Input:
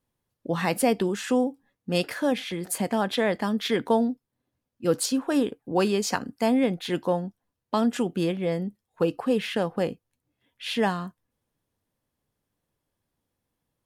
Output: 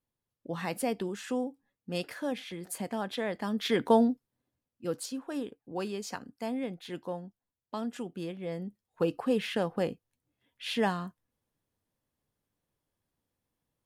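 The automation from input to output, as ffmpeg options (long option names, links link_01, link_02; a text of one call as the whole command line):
ffmpeg -i in.wav -af "volume=8dB,afade=type=in:start_time=3.36:duration=0.63:silence=0.354813,afade=type=out:start_time=3.99:duration=0.99:silence=0.251189,afade=type=in:start_time=8.35:duration=0.77:silence=0.398107" out.wav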